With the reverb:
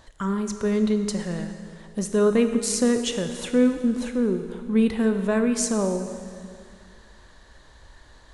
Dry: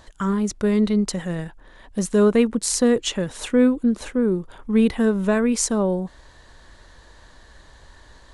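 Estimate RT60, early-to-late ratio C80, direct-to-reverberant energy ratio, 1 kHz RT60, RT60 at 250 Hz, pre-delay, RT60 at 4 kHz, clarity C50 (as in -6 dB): 2.3 s, 9.0 dB, 6.5 dB, 2.3 s, 2.3 s, 5 ms, 2.2 s, 8.0 dB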